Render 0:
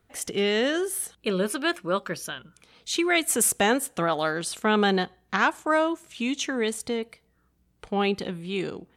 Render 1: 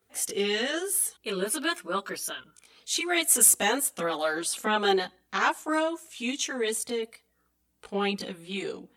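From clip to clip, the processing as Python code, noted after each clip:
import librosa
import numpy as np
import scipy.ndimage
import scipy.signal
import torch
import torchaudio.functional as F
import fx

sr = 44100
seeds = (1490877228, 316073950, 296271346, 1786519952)

y = fx.highpass(x, sr, hz=240.0, slope=6)
y = fx.high_shelf(y, sr, hz=6300.0, db=10.5)
y = fx.chorus_voices(y, sr, voices=6, hz=0.45, base_ms=18, depth_ms=2.6, mix_pct=60)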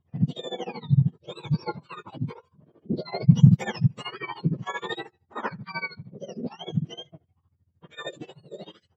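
y = fx.octave_mirror(x, sr, pivot_hz=1200.0)
y = fx.env_lowpass(y, sr, base_hz=2200.0, full_db=-11.0)
y = y * (1.0 - 0.88 / 2.0 + 0.88 / 2.0 * np.cos(2.0 * np.pi * 13.0 * (np.arange(len(y)) / sr)))
y = y * librosa.db_to_amplitude(-1.0)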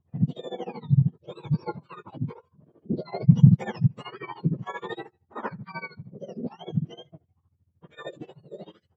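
y = fx.high_shelf(x, sr, hz=2100.0, db=-12.0)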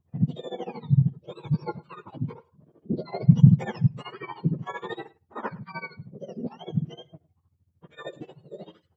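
y = x + 10.0 ** (-22.0 / 20.0) * np.pad(x, (int(106 * sr / 1000.0), 0))[:len(x)]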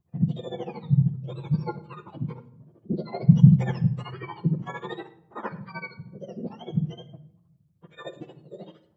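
y = fx.room_shoebox(x, sr, seeds[0], volume_m3=2200.0, walls='furnished', distance_m=0.82)
y = y * librosa.db_to_amplitude(-1.0)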